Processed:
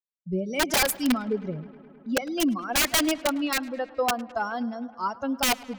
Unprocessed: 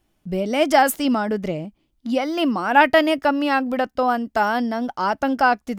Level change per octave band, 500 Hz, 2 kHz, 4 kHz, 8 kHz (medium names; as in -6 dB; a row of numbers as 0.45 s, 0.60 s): -8.5 dB, -7.0 dB, +1.0 dB, +7.0 dB